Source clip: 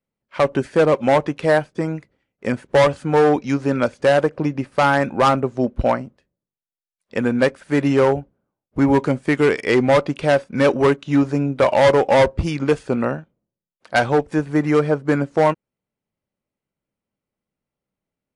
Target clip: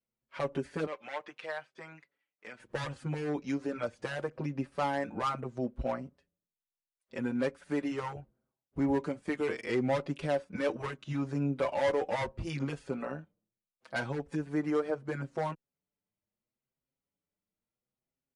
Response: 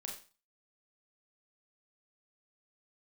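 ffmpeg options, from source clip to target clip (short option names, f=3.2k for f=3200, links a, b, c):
-filter_complex "[0:a]alimiter=limit=-15.5dB:level=0:latency=1:release=201,asettb=1/sr,asplit=3[a][b][c];[a]atrim=end=0.864[d];[b]atrim=start=0.86:end=2.6,asetpts=PTS-STARTPTS,afade=t=in:d=0.004:c=qsin,afade=t=out:st=1.736:d=0.004:c=qsin,bandpass=f=2.3k:t=q:w=0.71:csg=0[e];[c]atrim=start=2.596[f];[d][e]acrossfade=d=0.004:c1=hsin:c2=qsin[g];[g][f]acrossfade=d=0.004:c1=qsin:c2=hsin,asplit=2[h][i];[i]adelay=6,afreqshift=0.73[j];[h][j]amix=inputs=2:normalize=1,volume=-6dB"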